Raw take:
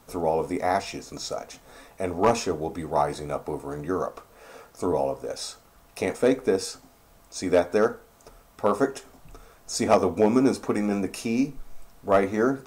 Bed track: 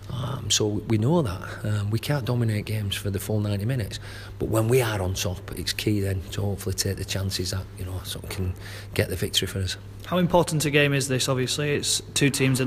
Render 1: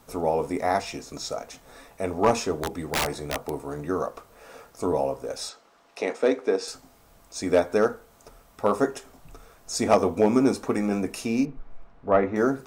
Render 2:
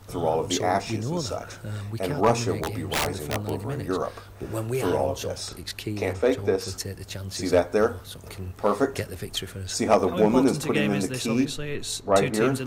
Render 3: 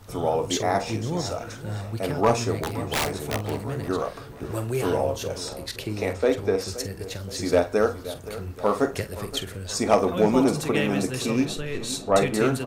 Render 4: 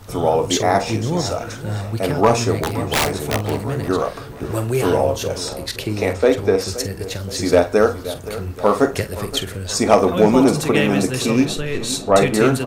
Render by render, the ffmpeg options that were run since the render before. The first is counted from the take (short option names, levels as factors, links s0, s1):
-filter_complex "[0:a]asettb=1/sr,asplit=3[s0][s1][s2];[s0]atrim=end=2.624[s3];[s1]atrim=start=2.62:end=3.53,asetpts=PTS-STARTPTS,afade=t=in:d=0.004:c=qsin,afade=t=out:st=0.906:d=0.004:c=qsin,aeval=exprs='(mod(8.41*val(0)+1,2)-1)/8.41':c=same[s4];[s2]atrim=start=3.526[s5];[s3][s4]acrossfade=d=0.004:c1=hsin:c2=qsin[s6];[s6][s5]acrossfade=d=0.004:c1=qsin:c2=hsin,asettb=1/sr,asplit=3[s7][s8][s9];[s7]atrim=end=5.494[s10];[s8]atrim=start=5.49:end=6.68,asetpts=PTS-STARTPTS,afade=t=in:d=0.004:c=qsin,afade=t=out:st=1.186:d=0.004:c=qsin,acrossover=split=230 6800:gain=0.0631 1 0.126[s11][s12][s13];[s11][s12][s13]amix=inputs=3:normalize=0[s14];[s9]atrim=start=6.676[s15];[s10][s14]acrossfade=d=0.004:c1=hsin:c2=qsin[s16];[s16][s15]acrossfade=d=0.004:c1=qsin:c2=hsin,asettb=1/sr,asplit=3[s17][s18][s19];[s17]atrim=end=11.454[s20];[s18]atrim=start=11.45:end=12.36,asetpts=PTS-STARTPTS,afade=t=in:d=0.004:c=qsin,afade=t=out:st=0.906:d=0.004:c=qsin,lowpass=2100[s21];[s19]atrim=start=12.356[s22];[s20][s21]acrossfade=d=0.004:c1=hsin:c2=qsin[s23];[s23][s22]acrossfade=d=0.004:c1=qsin:c2=hsin"
-filter_complex "[1:a]volume=0.422[s0];[0:a][s0]amix=inputs=2:normalize=0"
-filter_complex "[0:a]asplit=2[s0][s1];[s1]adelay=46,volume=0.224[s2];[s0][s2]amix=inputs=2:normalize=0,asplit=2[s3][s4];[s4]adelay=523,lowpass=f=3100:p=1,volume=0.178,asplit=2[s5][s6];[s6]adelay=523,lowpass=f=3100:p=1,volume=0.52,asplit=2[s7][s8];[s8]adelay=523,lowpass=f=3100:p=1,volume=0.52,asplit=2[s9][s10];[s10]adelay=523,lowpass=f=3100:p=1,volume=0.52,asplit=2[s11][s12];[s12]adelay=523,lowpass=f=3100:p=1,volume=0.52[s13];[s3][s5][s7][s9][s11][s13]amix=inputs=6:normalize=0"
-af "volume=2.24,alimiter=limit=0.708:level=0:latency=1"